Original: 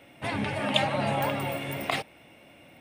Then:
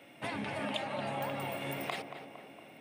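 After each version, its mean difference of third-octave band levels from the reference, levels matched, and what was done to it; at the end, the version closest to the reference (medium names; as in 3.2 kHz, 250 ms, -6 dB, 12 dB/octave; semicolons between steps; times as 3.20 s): 4.5 dB: high-pass 150 Hz 12 dB/octave; compression 4:1, threshold -33 dBFS, peak gain reduction 13 dB; tape echo 231 ms, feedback 64%, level -7 dB, low-pass 1.7 kHz; trim -2 dB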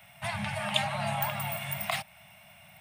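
8.0 dB: Chebyshev band-stop 200–630 Hz, order 4; treble shelf 8.1 kHz +12 dB; in parallel at -2 dB: compression, threshold -35 dBFS, peak gain reduction 16 dB; on the sum: trim -4.5 dB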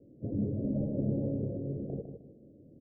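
18.5 dB: square wave that keeps the level; steep low-pass 500 Hz 48 dB/octave; feedback delay 154 ms, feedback 28%, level -8 dB; trim -5 dB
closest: first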